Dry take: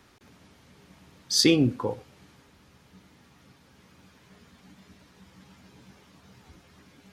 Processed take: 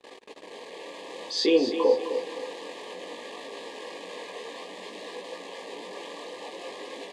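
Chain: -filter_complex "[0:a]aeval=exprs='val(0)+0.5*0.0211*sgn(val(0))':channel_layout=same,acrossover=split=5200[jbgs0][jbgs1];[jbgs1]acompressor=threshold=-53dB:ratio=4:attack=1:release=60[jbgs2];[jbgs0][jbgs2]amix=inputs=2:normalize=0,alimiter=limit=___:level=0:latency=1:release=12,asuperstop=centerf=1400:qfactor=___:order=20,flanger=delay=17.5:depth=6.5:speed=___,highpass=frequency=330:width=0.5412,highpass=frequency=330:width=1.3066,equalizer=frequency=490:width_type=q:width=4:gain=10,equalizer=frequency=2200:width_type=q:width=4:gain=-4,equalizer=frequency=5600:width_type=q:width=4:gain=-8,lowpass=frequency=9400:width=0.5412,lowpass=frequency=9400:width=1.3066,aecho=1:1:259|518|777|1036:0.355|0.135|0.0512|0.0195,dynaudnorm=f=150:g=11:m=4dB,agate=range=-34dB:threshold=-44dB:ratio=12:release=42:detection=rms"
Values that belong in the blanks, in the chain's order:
-14dB, 3.3, 0.56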